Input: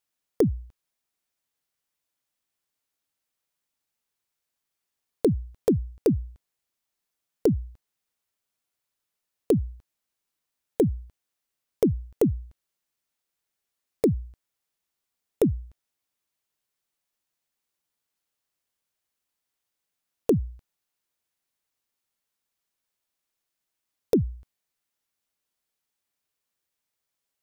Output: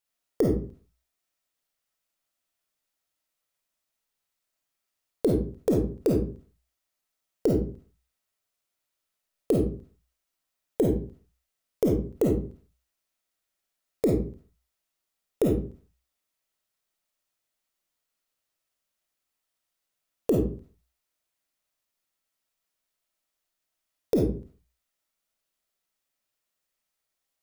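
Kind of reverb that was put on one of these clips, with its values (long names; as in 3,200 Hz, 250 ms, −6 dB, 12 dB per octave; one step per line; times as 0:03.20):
comb and all-pass reverb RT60 0.4 s, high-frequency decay 0.7×, pre-delay 10 ms, DRR −2 dB
level −3 dB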